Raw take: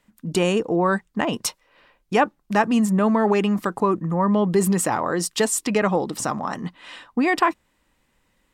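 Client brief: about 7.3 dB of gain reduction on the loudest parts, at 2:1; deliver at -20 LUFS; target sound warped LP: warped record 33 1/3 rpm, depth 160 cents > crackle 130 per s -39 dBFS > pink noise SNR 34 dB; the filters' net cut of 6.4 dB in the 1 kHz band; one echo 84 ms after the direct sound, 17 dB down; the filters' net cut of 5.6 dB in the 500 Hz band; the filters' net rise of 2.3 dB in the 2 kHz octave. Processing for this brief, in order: peaking EQ 500 Hz -6 dB; peaking EQ 1 kHz -7.5 dB; peaking EQ 2 kHz +5.5 dB; compression 2:1, threshold -31 dBFS; delay 84 ms -17 dB; warped record 33 1/3 rpm, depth 160 cents; crackle 130 per s -39 dBFS; pink noise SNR 34 dB; trim +10 dB

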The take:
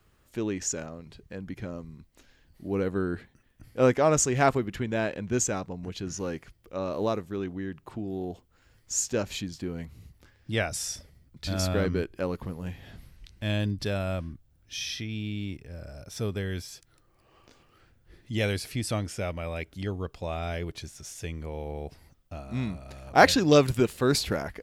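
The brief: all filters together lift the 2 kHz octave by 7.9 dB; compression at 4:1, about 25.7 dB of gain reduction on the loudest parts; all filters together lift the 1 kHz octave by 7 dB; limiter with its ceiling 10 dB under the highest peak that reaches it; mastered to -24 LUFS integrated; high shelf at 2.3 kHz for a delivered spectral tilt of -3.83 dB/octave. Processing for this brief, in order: peaking EQ 1 kHz +8 dB; peaking EQ 2 kHz +4.5 dB; treble shelf 2.3 kHz +5.5 dB; compression 4:1, threshold -38 dBFS; trim +17.5 dB; peak limiter -12 dBFS

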